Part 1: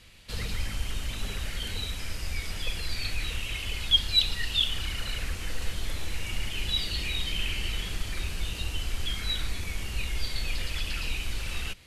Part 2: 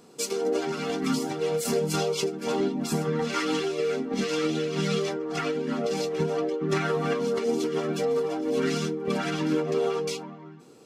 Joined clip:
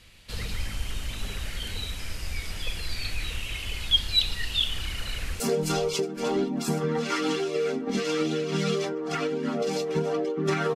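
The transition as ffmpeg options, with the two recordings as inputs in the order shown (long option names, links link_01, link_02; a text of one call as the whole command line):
ffmpeg -i cue0.wav -i cue1.wav -filter_complex "[0:a]apad=whole_dur=10.75,atrim=end=10.75,atrim=end=5.402[link_01];[1:a]atrim=start=1.638:end=6.99[link_02];[link_01][link_02]acrossfade=duration=0.004:curve1=hsin:curve2=hsin,asplit=2[link_03][link_04];[link_04]afade=type=in:start_time=5.08:duration=0.01,afade=type=out:start_time=5.4:duration=0.01,aecho=0:1:540|1080|1620:0.16788|0.0419701|0.0104925[link_05];[link_03][link_05]amix=inputs=2:normalize=0" out.wav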